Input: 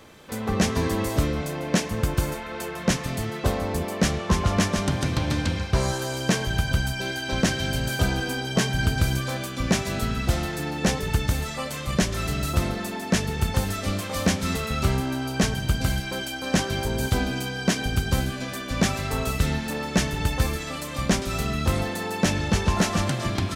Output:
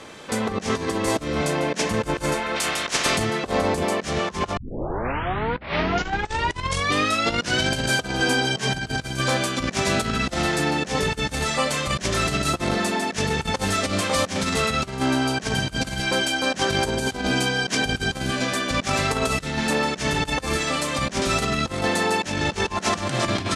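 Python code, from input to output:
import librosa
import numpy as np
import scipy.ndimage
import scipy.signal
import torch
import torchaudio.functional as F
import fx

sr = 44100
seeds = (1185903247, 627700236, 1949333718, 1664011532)

y = fx.spec_clip(x, sr, under_db=20, at=(2.55, 3.16), fade=0.02)
y = fx.edit(y, sr, fx.tape_start(start_s=4.57, length_s=3.12), tone=tone)
y = fx.over_compress(y, sr, threshold_db=-27.0, ratio=-0.5)
y = scipy.signal.sosfilt(scipy.signal.butter(4, 10000.0, 'lowpass', fs=sr, output='sos'), y)
y = fx.low_shelf(y, sr, hz=140.0, db=-11.5)
y = F.gain(torch.from_numpy(y), 6.5).numpy()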